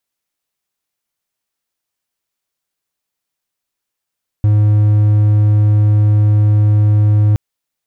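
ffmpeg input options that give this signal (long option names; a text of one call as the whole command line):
ffmpeg -f lavfi -i "aevalsrc='0.531*(1-4*abs(mod(105*t+0.25,1)-0.5))':duration=2.92:sample_rate=44100" out.wav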